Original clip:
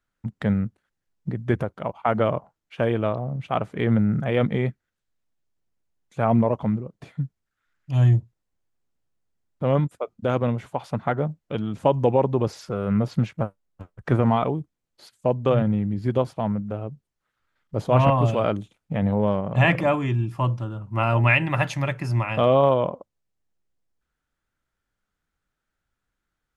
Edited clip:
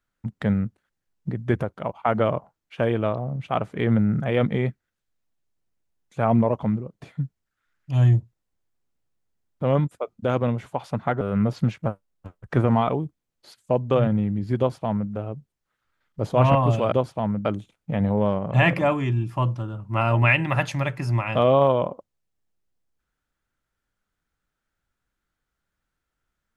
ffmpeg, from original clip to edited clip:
-filter_complex "[0:a]asplit=4[a][b][c][d];[a]atrim=end=11.212[e];[b]atrim=start=12.758:end=18.472[f];[c]atrim=start=16.128:end=16.662[g];[d]atrim=start=18.468[h];[e][f]acrossfade=d=0.004:c1=hsin:c2=hsin[i];[i][g]acrossfade=d=0.004:c1=hsin:c2=hsin[j];[j][h]acrossfade=d=0.004:c1=hsin:c2=hsin"

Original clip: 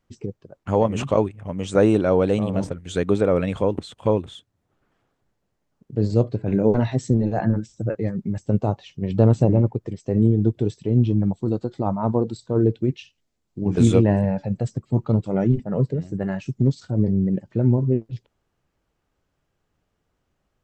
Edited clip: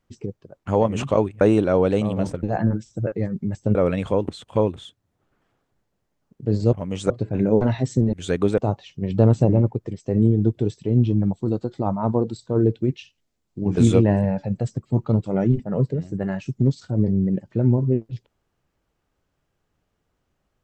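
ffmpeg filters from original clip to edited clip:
-filter_complex "[0:a]asplit=8[a][b][c][d][e][f][g][h];[a]atrim=end=1.412[i];[b]atrim=start=1.778:end=2.802[j];[c]atrim=start=7.258:end=8.582[k];[d]atrim=start=3.248:end=6.232[l];[e]atrim=start=1.408:end=1.782[m];[f]atrim=start=6.228:end=7.262[n];[g]atrim=start=2.798:end=3.252[o];[h]atrim=start=8.578[p];[i][j]acrossfade=d=0.004:c1=hsin:c2=hsin[q];[q][k]acrossfade=d=0.004:c1=hsin:c2=hsin[r];[r][l]acrossfade=d=0.004:c1=hsin:c2=hsin[s];[s][m]acrossfade=d=0.004:c1=hsin:c2=hsin[t];[t][n]acrossfade=d=0.004:c1=hsin:c2=hsin[u];[u][o]acrossfade=d=0.004:c1=hsin:c2=hsin[v];[v][p]acrossfade=d=0.004:c1=hsin:c2=hsin"

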